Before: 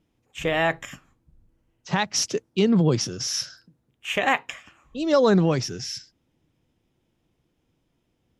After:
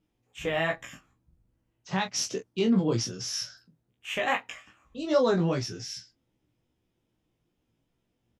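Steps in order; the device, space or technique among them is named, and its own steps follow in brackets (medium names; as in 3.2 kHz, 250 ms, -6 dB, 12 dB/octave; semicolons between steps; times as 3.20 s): double-tracked vocal (doubling 26 ms -8 dB; chorus 2.5 Hz, delay 15.5 ms, depth 2.6 ms); trim -3 dB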